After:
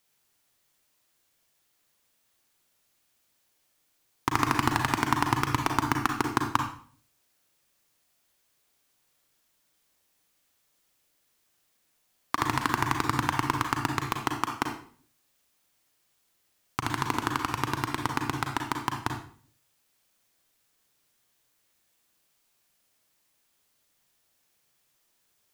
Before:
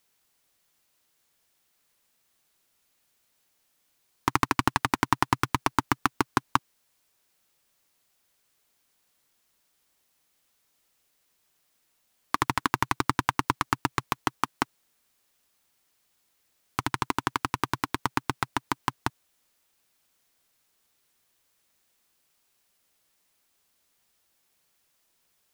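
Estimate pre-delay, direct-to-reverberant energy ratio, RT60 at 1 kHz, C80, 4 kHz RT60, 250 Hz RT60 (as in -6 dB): 34 ms, 3.0 dB, 0.45 s, 9.5 dB, 0.45 s, 0.65 s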